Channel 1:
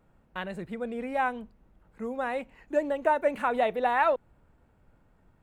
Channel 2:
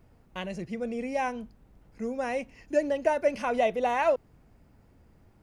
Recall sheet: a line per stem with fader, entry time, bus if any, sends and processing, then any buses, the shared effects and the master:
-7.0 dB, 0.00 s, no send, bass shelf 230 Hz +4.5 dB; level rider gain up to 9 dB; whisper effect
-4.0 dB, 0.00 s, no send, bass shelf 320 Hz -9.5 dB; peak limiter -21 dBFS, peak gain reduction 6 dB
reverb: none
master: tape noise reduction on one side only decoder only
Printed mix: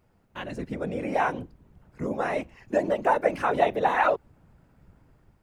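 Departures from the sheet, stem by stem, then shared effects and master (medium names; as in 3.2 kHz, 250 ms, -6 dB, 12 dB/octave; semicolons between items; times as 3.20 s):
stem 2: polarity flipped; master: missing tape noise reduction on one side only decoder only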